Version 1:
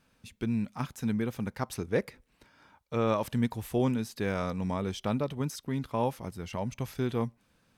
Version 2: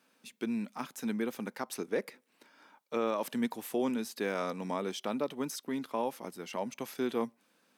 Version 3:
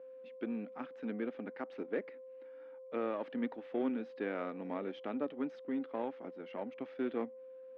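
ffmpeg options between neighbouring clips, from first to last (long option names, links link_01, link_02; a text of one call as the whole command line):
ffmpeg -i in.wav -af "highpass=frequency=230:width=0.5412,highpass=frequency=230:width=1.3066,highshelf=frequency=11000:gain=4.5,alimiter=limit=-21dB:level=0:latency=1:release=157" out.wav
ffmpeg -i in.wav -af "aeval=exprs='val(0)+0.00708*sin(2*PI*520*n/s)':channel_layout=same,aeval=exprs='0.1*(cos(1*acos(clip(val(0)/0.1,-1,1)))-cos(1*PI/2))+0.00631*(cos(3*acos(clip(val(0)/0.1,-1,1)))-cos(3*PI/2))+0.00398*(cos(8*acos(clip(val(0)/0.1,-1,1)))-cos(8*PI/2))':channel_layout=same,highpass=220,equalizer=frequency=280:width_type=q:width=4:gain=7,equalizer=frequency=1000:width_type=q:width=4:gain=-6,equalizer=frequency=2500:width_type=q:width=4:gain=-3,lowpass=frequency=2700:width=0.5412,lowpass=frequency=2700:width=1.3066,volume=-3.5dB" out.wav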